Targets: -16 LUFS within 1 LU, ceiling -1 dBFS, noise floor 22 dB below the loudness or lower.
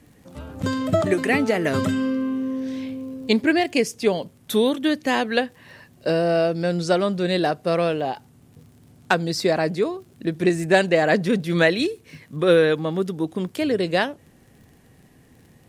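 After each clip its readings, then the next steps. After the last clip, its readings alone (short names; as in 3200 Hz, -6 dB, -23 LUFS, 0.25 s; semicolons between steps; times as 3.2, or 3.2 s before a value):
ticks 36/s; loudness -22.0 LUFS; peak -4.5 dBFS; loudness target -16.0 LUFS
-> de-click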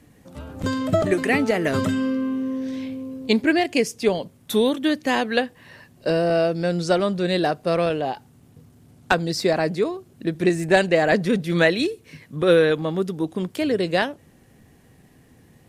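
ticks 0/s; loudness -22.0 LUFS; peak -2.5 dBFS; loudness target -16.0 LUFS
-> gain +6 dB; limiter -1 dBFS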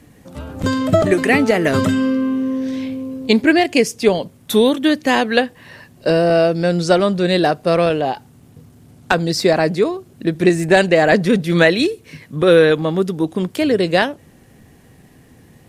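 loudness -16.5 LUFS; peak -1.0 dBFS; noise floor -48 dBFS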